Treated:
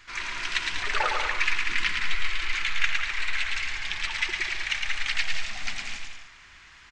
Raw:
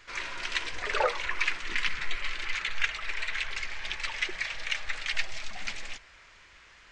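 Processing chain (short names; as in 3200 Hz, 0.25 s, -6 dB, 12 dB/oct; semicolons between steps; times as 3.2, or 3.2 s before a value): bell 510 Hz -13 dB 0.6 oct; on a send: bouncing-ball echo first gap 0.11 s, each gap 0.75×, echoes 5; on the sum: gain +2.5 dB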